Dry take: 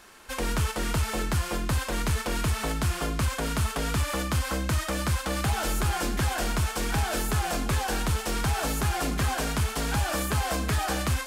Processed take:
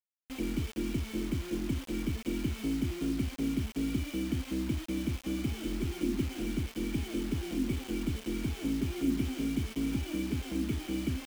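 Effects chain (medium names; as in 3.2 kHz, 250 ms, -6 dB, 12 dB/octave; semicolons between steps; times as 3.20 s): cascade formant filter i; small resonant body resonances 350/1400 Hz, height 9 dB, ringing for 35 ms; word length cut 8-bit, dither none; trim +3.5 dB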